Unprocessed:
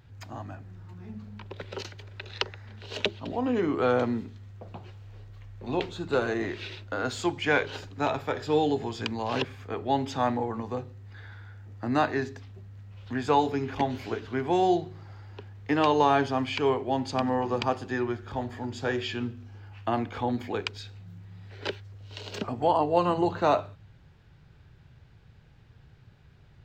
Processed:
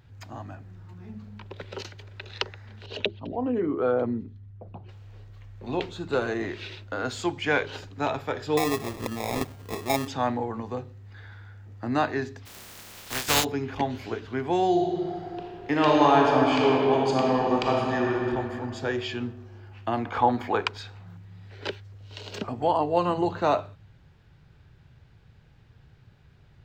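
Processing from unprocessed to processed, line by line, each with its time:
2.86–4.89 s: resonances exaggerated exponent 1.5
8.57–10.08 s: sample-rate reducer 1.5 kHz
12.45–13.43 s: spectral contrast reduction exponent 0.22
14.70–18.20 s: reverb throw, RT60 2.8 s, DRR -2 dB
20.05–21.17 s: peaking EQ 1 kHz +12 dB 1.8 oct

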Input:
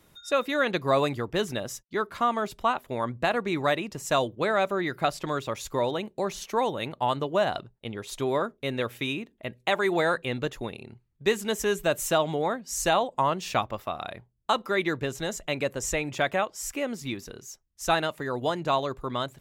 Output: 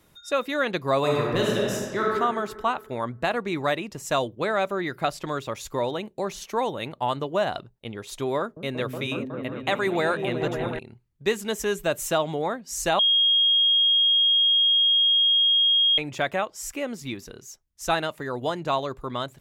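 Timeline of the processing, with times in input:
0.99–2.03 s: reverb throw, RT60 1.8 s, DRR -3.5 dB
8.38–10.79 s: delay with an opening low-pass 184 ms, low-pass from 200 Hz, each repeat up 1 oct, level 0 dB
12.99–15.98 s: bleep 3.26 kHz -16.5 dBFS

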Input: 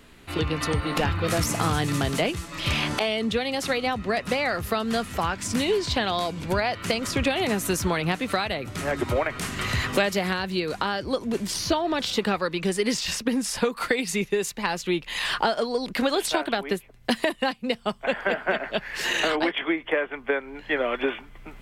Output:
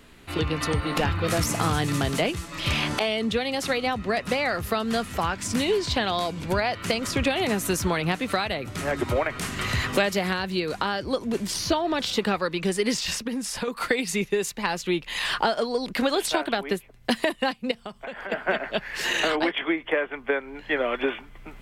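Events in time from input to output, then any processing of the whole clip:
13.18–13.68 s: compression 2:1, threshold -29 dBFS
17.71–18.32 s: compression, threshold -32 dBFS

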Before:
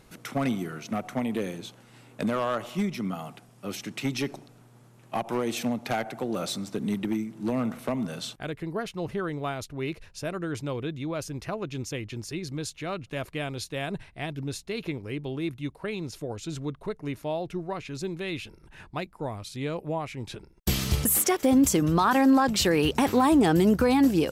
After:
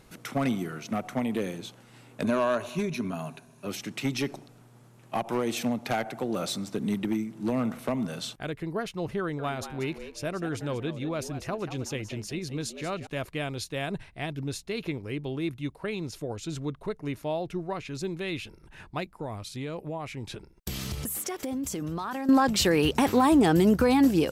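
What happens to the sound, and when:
2.24–3.67 s: rippled EQ curve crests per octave 1.5, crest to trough 10 dB
9.20–13.07 s: frequency-shifting echo 186 ms, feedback 31%, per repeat +100 Hz, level -11.5 dB
19.10–22.29 s: compression, threshold -30 dBFS

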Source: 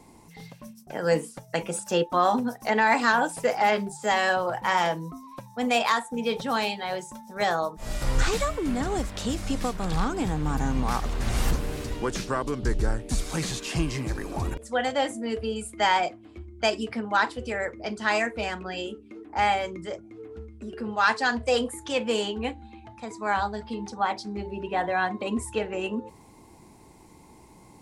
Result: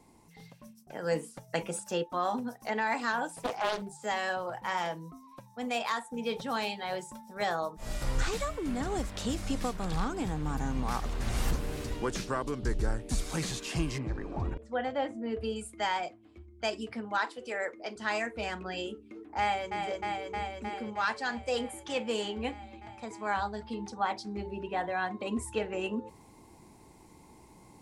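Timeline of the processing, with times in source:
3.42–3.82 s: loudspeaker Doppler distortion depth 0.71 ms
6.91–7.59 s: band-stop 6.3 kHz
13.98–15.41 s: tape spacing loss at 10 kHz 27 dB
17.18–17.96 s: high-pass 320 Hz
19.40–19.81 s: echo throw 310 ms, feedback 80%, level -6 dB
whole clip: gain riding within 3 dB 0.5 s; trim -6.5 dB

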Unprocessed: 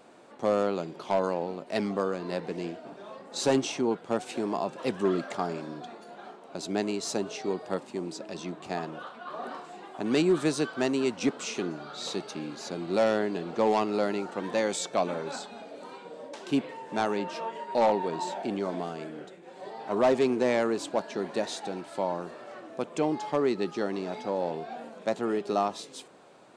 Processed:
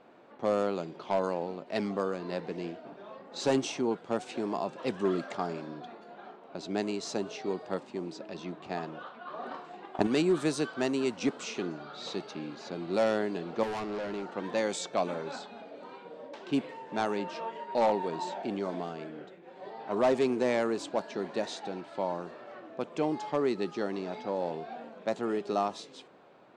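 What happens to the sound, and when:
9.48–10.07 s: transient shaper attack +12 dB, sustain +1 dB
13.63–14.32 s: hard clipper -30 dBFS
whole clip: level-controlled noise filter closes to 3 kHz, open at -21.5 dBFS; trim -2.5 dB

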